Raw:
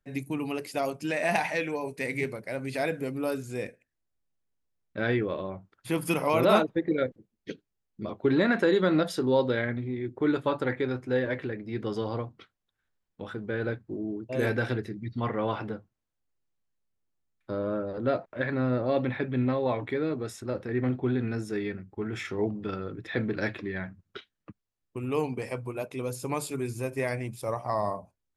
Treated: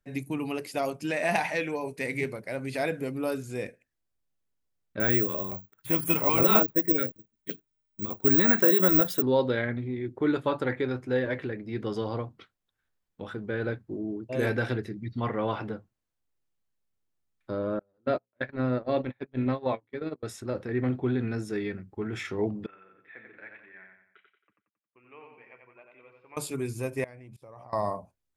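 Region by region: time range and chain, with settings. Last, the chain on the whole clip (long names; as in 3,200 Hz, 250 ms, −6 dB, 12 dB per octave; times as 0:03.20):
0:05.00–0:09.22: auto-filter notch square 5.8 Hz 620–4,800 Hz + bad sample-rate conversion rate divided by 2×, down none, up zero stuff
0:17.79–0:20.23: mains-hum notches 60/120/180/240/300/360/420/480/540 Hz + noise gate −29 dBFS, range −37 dB
0:22.66–0:26.37: Butterworth low-pass 2,400 Hz + first difference + repeating echo 90 ms, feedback 44%, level −4.5 dB
0:27.04–0:27.73: high-shelf EQ 4,800 Hz −11.5 dB + output level in coarse steps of 24 dB
whole clip: no processing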